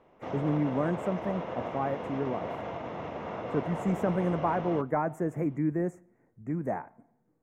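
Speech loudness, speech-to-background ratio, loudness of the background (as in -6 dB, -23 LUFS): -31.5 LUFS, 6.0 dB, -37.5 LUFS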